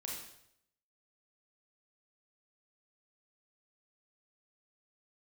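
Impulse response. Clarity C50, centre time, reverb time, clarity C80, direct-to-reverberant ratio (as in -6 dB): 1.5 dB, 54 ms, 0.75 s, 5.0 dB, -3.0 dB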